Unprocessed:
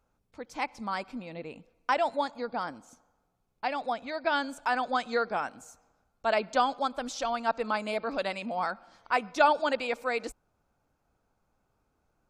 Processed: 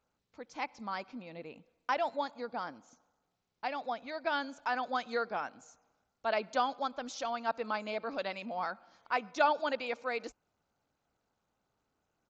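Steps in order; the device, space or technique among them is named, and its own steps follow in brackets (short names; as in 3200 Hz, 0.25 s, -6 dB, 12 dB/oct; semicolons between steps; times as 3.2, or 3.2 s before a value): Bluetooth headset (HPF 120 Hz 6 dB/oct; downsampling 16000 Hz; gain -5 dB; SBC 64 kbps 16000 Hz)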